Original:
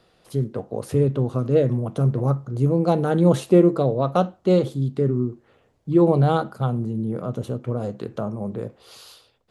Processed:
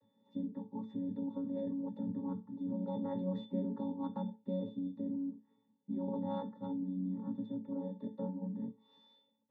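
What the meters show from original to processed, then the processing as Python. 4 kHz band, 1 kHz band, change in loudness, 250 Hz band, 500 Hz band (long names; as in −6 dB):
below −20 dB, −20.5 dB, −18.0 dB, −13.5 dB, −23.0 dB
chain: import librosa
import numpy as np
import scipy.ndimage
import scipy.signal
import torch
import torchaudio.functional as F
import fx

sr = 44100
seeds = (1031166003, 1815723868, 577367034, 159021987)

p1 = fx.chord_vocoder(x, sr, chord='bare fifth', root=54)
p2 = fx.octave_resonator(p1, sr, note='A', decay_s=0.24)
p3 = fx.over_compress(p2, sr, threshold_db=-45.0, ratio=-0.5)
p4 = p2 + F.gain(torch.from_numpy(p3), 1.0).numpy()
y = F.gain(torch.from_numpy(p4), 1.0).numpy()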